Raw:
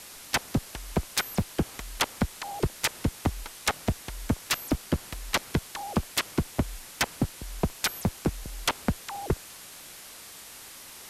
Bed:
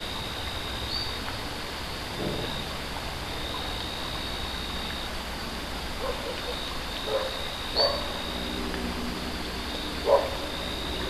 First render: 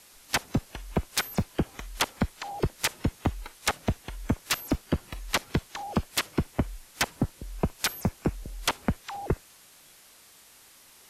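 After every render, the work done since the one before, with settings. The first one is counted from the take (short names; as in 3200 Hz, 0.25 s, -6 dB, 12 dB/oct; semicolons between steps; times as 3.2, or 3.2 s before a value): noise print and reduce 9 dB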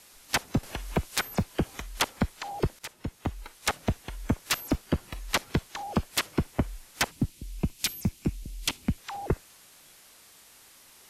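0.63–1.82 three-band squash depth 40%; 2.79–4.1 fade in equal-power, from -16.5 dB; 7.11–8.98 band shelf 860 Hz -11.5 dB 2.4 oct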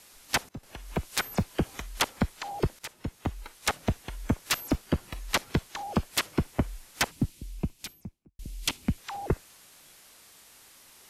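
0.49–1.23 fade in, from -21 dB; 7.29–8.39 studio fade out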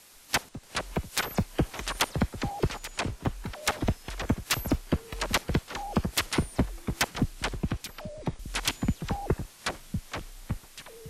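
echoes that change speed 0.308 s, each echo -5 st, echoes 3, each echo -6 dB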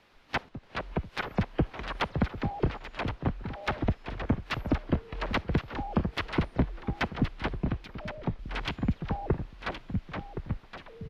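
air absorption 330 m; echo 1.069 s -10 dB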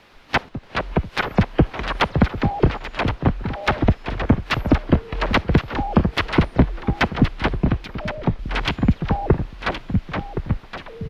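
gain +11 dB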